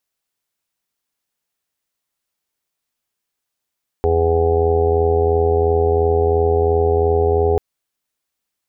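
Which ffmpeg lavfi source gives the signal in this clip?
-f lavfi -i "aevalsrc='0.119*sin(2*PI*82.9*t)+0.0158*sin(2*PI*165.8*t)+0.0211*sin(2*PI*248.7*t)+0.0224*sin(2*PI*331.6*t)+0.178*sin(2*PI*414.5*t)+0.075*sin(2*PI*497.4*t)+0.0119*sin(2*PI*580.3*t)+0.0168*sin(2*PI*663.2*t)+0.0668*sin(2*PI*746.1*t)+0.0266*sin(2*PI*829*t)':d=3.54:s=44100"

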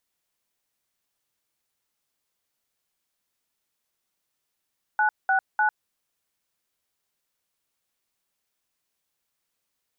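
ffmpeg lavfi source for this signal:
-f lavfi -i "aevalsrc='0.0891*clip(min(mod(t,0.3),0.1-mod(t,0.3))/0.002,0,1)*(eq(floor(t/0.3),0)*(sin(2*PI*852*mod(t,0.3))+sin(2*PI*1477*mod(t,0.3)))+eq(floor(t/0.3),1)*(sin(2*PI*770*mod(t,0.3))+sin(2*PI*1477*mod(t,0.3)))+eq(floor(t/0.3),2)*(sin(2*PI*852*mod(t,0.3))+sin(2*PI*1477*mod(t,0.3))))':d=0.9:s=44100"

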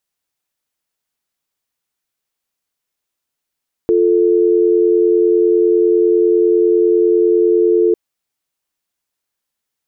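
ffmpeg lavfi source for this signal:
-f lavfi -i "aevalsrc='0.251*(sin(2*PI*350*t)+sin(2*PI*440*t))':d=4.05:s=44100"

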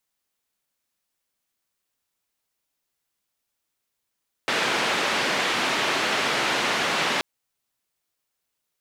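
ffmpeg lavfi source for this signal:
-f lavfi -i "anoisesrc=c=white:d=2.73:r=44100:seed=1,highpass=f=210,lowpass=f=2800,volume=-10.3dB"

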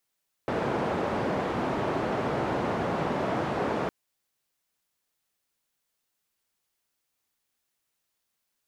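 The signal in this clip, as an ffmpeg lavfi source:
-f lavfi -i "anoisesrc=c=white:d=3.41:r=44100:seed=1,highpass=f=110,lowpass=f=740,volume=-8.7dB"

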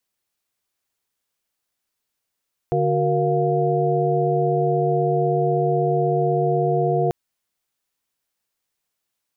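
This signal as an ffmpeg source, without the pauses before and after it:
-f lavfi -i "aevalsrc='0.075*(sin(2*PI*146.83*t)+sin(2*PI*369.99*t)+sin(2*PI*466.16*t)+sin(2*PI*698.46*t))':d=4.39:s=44100"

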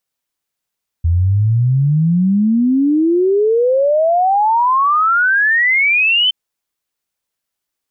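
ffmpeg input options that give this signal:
-f lavfi -i "aevalsrc='0.316*clip(min(t,5.27-t)/0.01,0,1)*sin(2*PI*81*5.27/log(3100/81)*(exp(log(3100/81)*t/5.27)-1))':d=5.27:s=44100"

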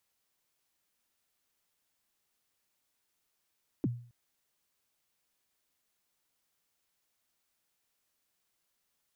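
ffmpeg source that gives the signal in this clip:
-f lavfi -i "aevalsrc='0.0631*pow(10,-3*t/0.46)*sin(2*PI*(360*0.032/log(120/360)*(exp(log(120/360)*min(t,0.032)/0.032)-1)+120*max(t-0.032,0)))':d=0.27:s=44100"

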